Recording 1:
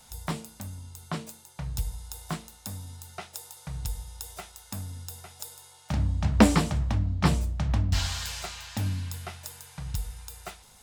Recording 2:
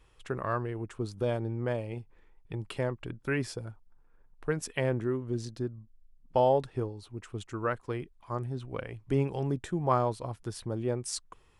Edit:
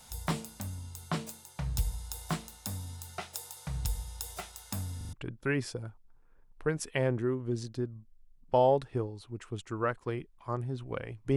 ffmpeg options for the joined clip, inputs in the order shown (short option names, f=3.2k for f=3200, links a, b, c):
-filter_complex "[0:a]apad=whole_dur=11.36,atrim=end=11.36,asplit=4[a][b][c][d];[a]atrim=end=5.012[e];[b]atrim=start=4.968:end=5.012[f];[c]atrim=start=4.968:end=5.012[g];[d]atrim=start=4.968:end=5.012[h];[1:a]atrim=start=2.948:end=9.18[i];[e][f]acrossfade=d=0.004:c1=hsin:c2=hsin[j];[j][g]acrossfade=d=0.004:c1=hsin:c2=hsin[k];[k][h]acrossfade=d=0.004:c1=hsin:c2=hsin[l];[l][i]acrossfade=d=0.004:c1=hsin:c2=hsin"